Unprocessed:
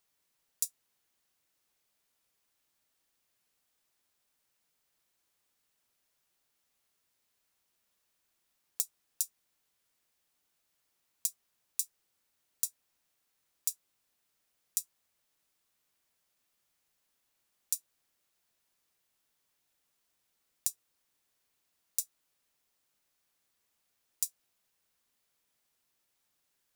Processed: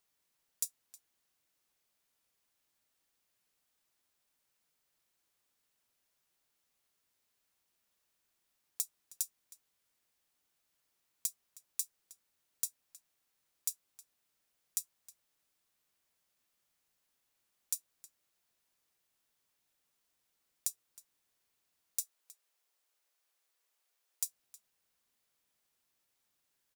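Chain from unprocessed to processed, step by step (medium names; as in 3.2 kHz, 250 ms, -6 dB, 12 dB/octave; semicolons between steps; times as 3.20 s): saturation -10 dBFS, distortion -14 dB; 22.00–24.25 s: high-pass 380 Hz 24 dB/octave; echo from a far wall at 54 m, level -15 dB; trim -2 dB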